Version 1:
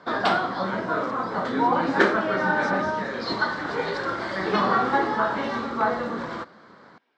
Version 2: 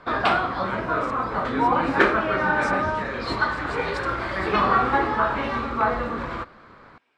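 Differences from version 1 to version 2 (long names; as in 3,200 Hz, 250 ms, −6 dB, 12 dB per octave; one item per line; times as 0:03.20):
background: add low-pass filter 4,100 Hz 12 dB per octave
master: remove loudspeaker in its box 170–5,900 Hz, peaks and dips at 190 Hz +5 dB, 1,200 Hz −4 dB, 2,500 Hz −9 dB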